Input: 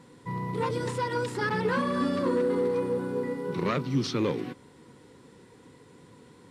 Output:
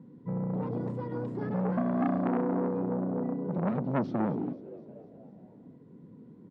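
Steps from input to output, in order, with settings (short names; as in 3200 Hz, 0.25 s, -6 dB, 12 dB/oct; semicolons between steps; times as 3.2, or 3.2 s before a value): band-pass 200 Hz, Q 2.2; on a send: frequency-shifting echo 0.246 s, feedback 55%, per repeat +82 Hz, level -18 dB; on the sum: core saturation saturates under 800 Hz; gain +7.5 dB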